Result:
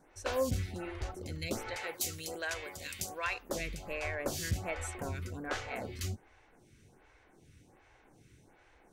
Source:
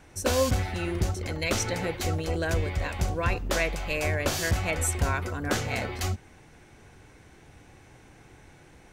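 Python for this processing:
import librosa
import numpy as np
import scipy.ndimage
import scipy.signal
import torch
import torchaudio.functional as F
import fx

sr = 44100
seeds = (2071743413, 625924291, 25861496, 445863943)

y = fx.tilt_eq(x, sr, slope=3.5, at=(1.76, 3.5))
y = fx.stagger_phaser(y, sr, hz=1.3)
y = y * librosa.db_to_amplitude(-6.0)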